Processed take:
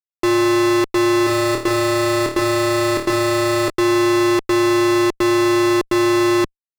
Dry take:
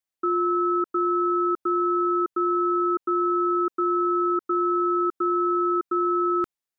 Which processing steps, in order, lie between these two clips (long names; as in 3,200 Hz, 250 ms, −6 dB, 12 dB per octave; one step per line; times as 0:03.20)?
Bessel low-pass filter 640 Hz, order 4
parametric band 72 Hz −14.5 dB 2 octaves
fuzz pedal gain 52 dB, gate −54 dBFS
0:01.24–0:03.70: flutter between parallel walls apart 4.6 metres, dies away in 0.41 s
level −1.5 dB